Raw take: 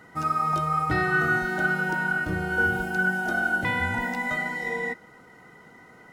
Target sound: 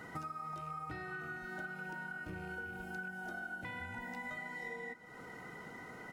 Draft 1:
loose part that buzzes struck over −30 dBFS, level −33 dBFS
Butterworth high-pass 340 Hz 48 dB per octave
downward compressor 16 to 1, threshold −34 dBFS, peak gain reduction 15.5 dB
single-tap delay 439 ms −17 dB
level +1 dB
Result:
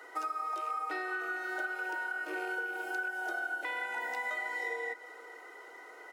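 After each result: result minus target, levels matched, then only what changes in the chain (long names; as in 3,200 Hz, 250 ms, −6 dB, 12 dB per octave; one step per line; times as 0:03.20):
250 Hz band −8.5 dB; downward compressor: peak gain reduction −8 dB
remove: Butterworth high-pass 340 Hz 48 dB per octave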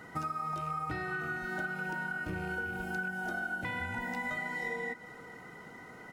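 downward compressor: peak gain reduction −7.5 dB
change: downward compressor 16 to 1, threshold −42 dBFS, peak gain reduction 23 dB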